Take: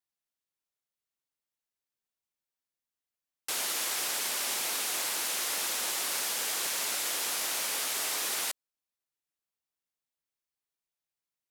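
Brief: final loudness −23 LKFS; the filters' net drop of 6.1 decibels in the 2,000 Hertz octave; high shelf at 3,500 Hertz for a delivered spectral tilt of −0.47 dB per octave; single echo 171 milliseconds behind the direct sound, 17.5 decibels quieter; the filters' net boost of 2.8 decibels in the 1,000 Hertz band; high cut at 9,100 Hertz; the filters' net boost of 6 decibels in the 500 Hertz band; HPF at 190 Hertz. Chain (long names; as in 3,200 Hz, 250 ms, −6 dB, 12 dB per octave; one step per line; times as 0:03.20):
high-pass filter 190 Hz
low-pass filter 9,100 Hz
parametric band 500 Hz +7 dB
parametric band 1,000 Hz +4 dB
parametric band 2,000 Hz −8.5 dB
high-shelf EQ 3,500 Hz −3.5 dB
single-tap delay 171 ms −17.5 dB
level +11 dB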